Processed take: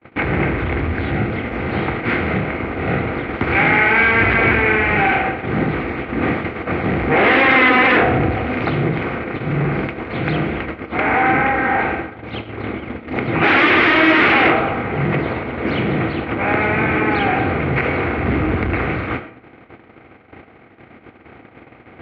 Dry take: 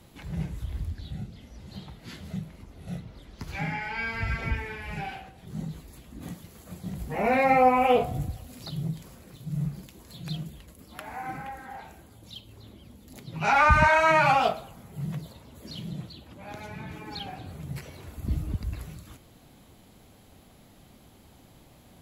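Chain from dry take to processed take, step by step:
compressor on every frequency bin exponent 0.6
noise gate −34 dBFS, range −50 dB
sine wavefolder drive 15 dB, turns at −5 dBFS
loudspeaker in its box 120–2,500 Hz, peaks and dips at 170 Hz −9 dB, 340 Hz +8 dB, 590 Hz −5 dB, 930 Hz −7 dB, 2,100 Hz +5 dB
convolution reverb RT60 0.50 s, pre-delay 45 ms, DRR 12.5 dB
level −3.5 dB

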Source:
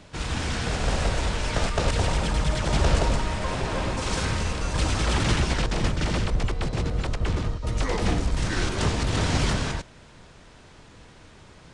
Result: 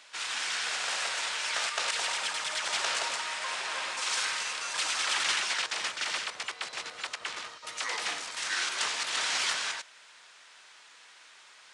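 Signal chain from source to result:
high-pass filter 1,400 Hz 12 dB per octave
level +2 dB

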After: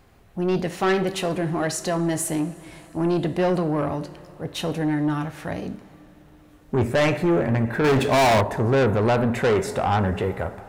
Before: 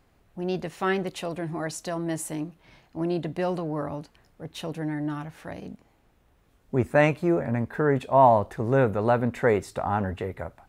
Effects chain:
coupled-rooms reverb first 0.5 s, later 4.9 s, from −19 dB, DRR 10 dB
0:07.84–0:08.41: leveller curve on the samples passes 2
soft clipping −23.5 dBFS, distortion −4 dB
level +8 dB

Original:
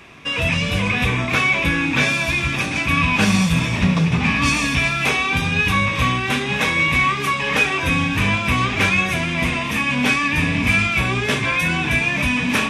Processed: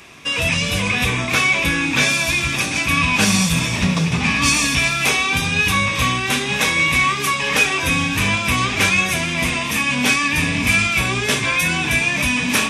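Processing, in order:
bass and treble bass −2 dB, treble +10 dB

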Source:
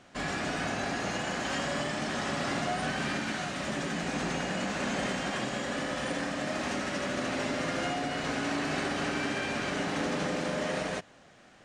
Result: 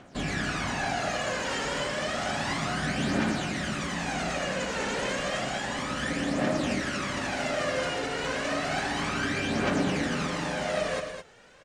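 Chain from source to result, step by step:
phase shifter 0.31 Hz, delay 2.3 ms, feedback 59%
on a send: loudspeakers that aren't time-aligned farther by 40 metres −10 dB, 73 metres −8 dB

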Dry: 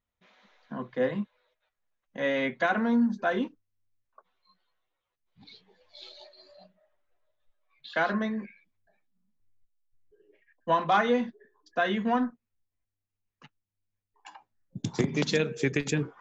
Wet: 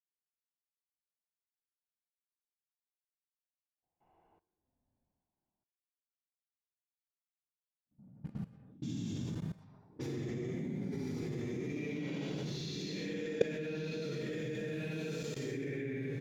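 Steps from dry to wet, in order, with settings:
parametric band 1,000 Hz −7.5 dB 1.2 octaves
mains-hum notches 50/100 Hz
on a send: repeating echo 137 ms, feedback 30%, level −6 dB
on the sum: centre clipping without the shift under −43.5 dBFS
extreme stretch with random phases 8.4×, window 0.10 s, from 0:13.77
output level in coarse steps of 19 dB
high-shelf EQ 2,500 Hz −8.5 dB
low-pass that shuts in the quiet parts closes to 400 Hz, open at −38.5 dBFS

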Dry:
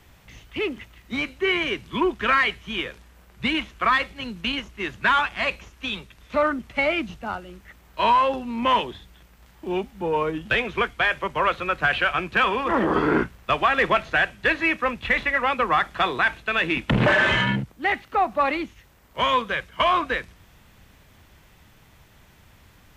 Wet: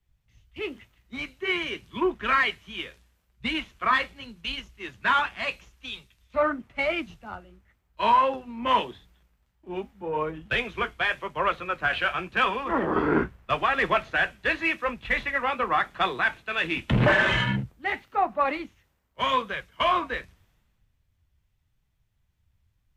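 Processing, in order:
flanger 0.87 Hz, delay 4.7 ms, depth 8.2 ms, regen −56%
multiband upward and downward expander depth 70%

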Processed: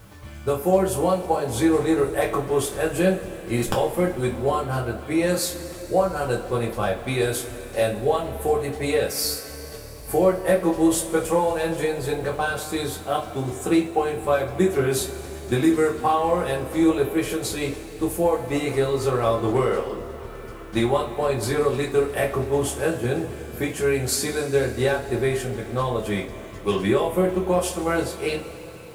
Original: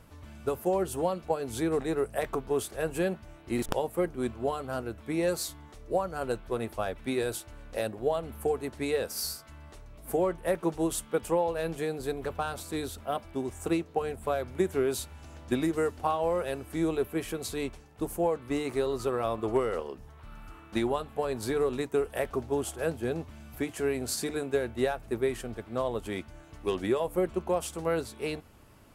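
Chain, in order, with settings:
coupled-rooms reverb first 0.23 s, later 4 s, from −22 dB, DRR −3 dB
bit reduction 10 bits
level +4 dB

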